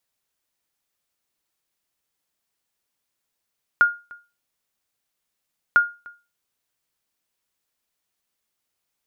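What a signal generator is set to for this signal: sonar ping 1420 Hz, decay 0.29 s, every 1.95 s, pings 2, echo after 0.30 s, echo -25.5 dB -7.5 dBFS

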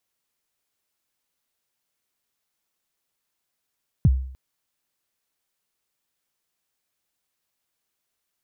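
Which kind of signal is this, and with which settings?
kick drum length 0.30 s, from 180 Hz, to 65 Hz, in 39 ms, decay 0.59 s, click off, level -10 dB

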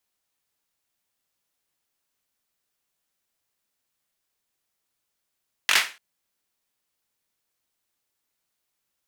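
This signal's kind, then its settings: hand clap length 0.29 s, apart 21 ms, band 2100 Hz, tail 0.31 s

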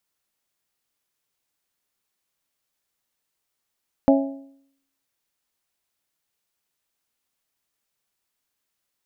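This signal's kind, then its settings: metal hit bell, lowest mode 274 Hz, modes 4, decay 0.68 s, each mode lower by 3.5 dB, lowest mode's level -11.5 dB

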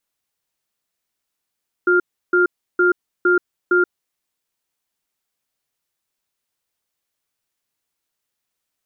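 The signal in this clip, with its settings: cadence 358 Hz, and 1400 Hz, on 0.13 s, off 0.33 s, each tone -14.5 dBFS 2.15 s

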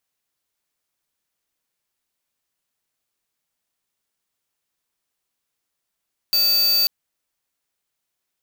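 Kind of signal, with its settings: tone square 4610 Hz -17.5 dBFS 0.54 s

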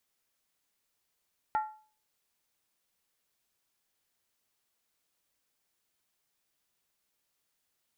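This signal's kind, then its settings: skin hit, lowest mode 861 Hz, decay 0.42 s, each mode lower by 9 dB, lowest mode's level -23.5 dB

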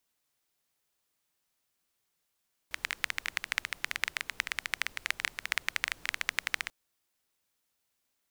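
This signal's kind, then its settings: rain from filtered ticks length 3.99 s, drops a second 14, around 2000 Hz, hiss -20.5 dB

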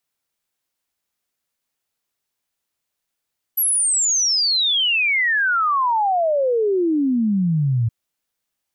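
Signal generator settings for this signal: log sweep 12000 Hz -> 110 Hz 4.32 s -15.5 dBFS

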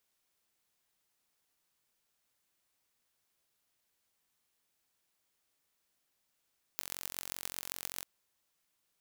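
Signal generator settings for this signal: pulse train 45.2/s, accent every 6, -8.5 dBFS 1.24 s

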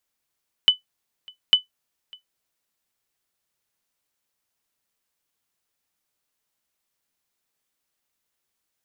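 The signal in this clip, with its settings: sonar ping 3000 Hz, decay 0.13 s, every 0.85 s, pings 2, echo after 0.60 s, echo -27.5 dB -5.5 dBFS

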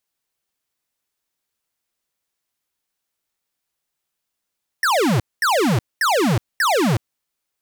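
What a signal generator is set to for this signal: burst of laser zaps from 1900 Hz, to 98 Hz, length 0.37 s square, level -17 dB, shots 4, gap 0.22 s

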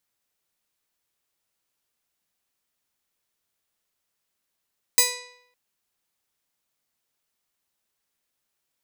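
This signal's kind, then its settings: plucked string B4, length 0.56 s, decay 0.75 s, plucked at 0.35, bright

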